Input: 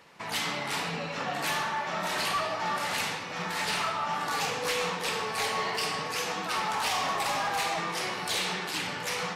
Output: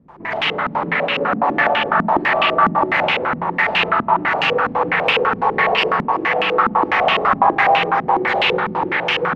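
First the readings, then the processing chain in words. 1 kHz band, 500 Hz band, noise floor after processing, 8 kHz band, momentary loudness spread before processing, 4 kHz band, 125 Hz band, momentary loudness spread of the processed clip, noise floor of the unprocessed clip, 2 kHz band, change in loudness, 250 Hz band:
+14.5 dB, +15.5 dB, −30 dBFS, below −15 dB, 3 LU, +8.5 dB, +11.0 dB, 5 LU, −37 dBFS, +14.0 dB, +13.0 dB, +15.0 dB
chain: bit-depth reduction 8 bits, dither triangular
spring reverb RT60 3.6 s, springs 40/46 ms, chirp 25 ms, DRR −4 dB
low-pass on a step sequencer 12 Hz 230–2,800 Hz
level +5.5 dB

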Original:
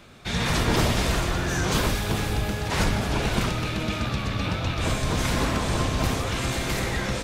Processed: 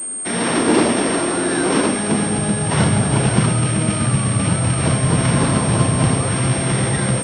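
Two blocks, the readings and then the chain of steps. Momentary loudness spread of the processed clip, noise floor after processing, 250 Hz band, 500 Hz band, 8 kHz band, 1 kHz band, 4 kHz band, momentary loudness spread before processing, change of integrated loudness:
3 LU, −22 dBFS, +10.5 dB, +8.5 dB, +14.0 dB, +6.0 dB, +2.0 dB, 5 LU, +8.0 dB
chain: samples sorted by size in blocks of 8 samples
high-pass filter sweep 280 Hz → 130 Hz, 0:01.76–0:02.80
switching amplifier with a slow clock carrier 8,600 Hz
level +6.5 dB

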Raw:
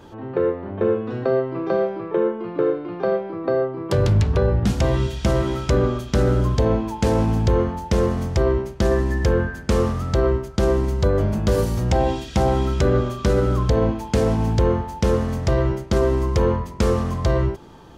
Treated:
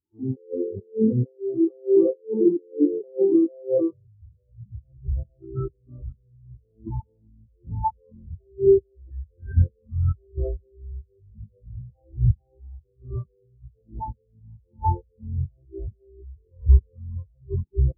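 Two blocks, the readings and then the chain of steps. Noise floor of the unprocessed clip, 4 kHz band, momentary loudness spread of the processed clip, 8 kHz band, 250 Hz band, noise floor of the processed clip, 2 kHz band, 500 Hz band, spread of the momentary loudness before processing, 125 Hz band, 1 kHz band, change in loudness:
−37 dBFS, below −40 dB, 21 LU, below −40 dB, −3.5 dB, −65 dBFS, below −30 dB, −5.5 dB, 4 LU, −6.5 dB, −8.0 dB, −3.5 dB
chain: delay that plays each chunk backwards 280 ms, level −7.5 dB
compressor whose output falls as the input rises −28 dBFS, ratio −1
every bin expanded away from the loudest bin 4 to 1
level +5.5 dB

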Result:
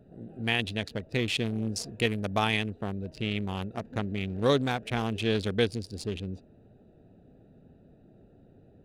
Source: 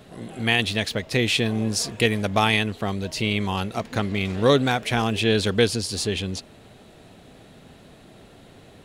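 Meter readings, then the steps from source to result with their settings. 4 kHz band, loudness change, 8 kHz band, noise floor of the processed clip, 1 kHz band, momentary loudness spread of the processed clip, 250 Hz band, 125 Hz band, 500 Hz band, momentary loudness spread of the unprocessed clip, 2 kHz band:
−8.5 dB, −7.5 dB, −12.5 dB, −58 dBFS, −7.5 dB, 9 LU, −6.5 dB, −6.0 dB, −7.0 dB, 8 LU, −8.0 dB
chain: adaptive Wiener filter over 41 samples
level −6 dB

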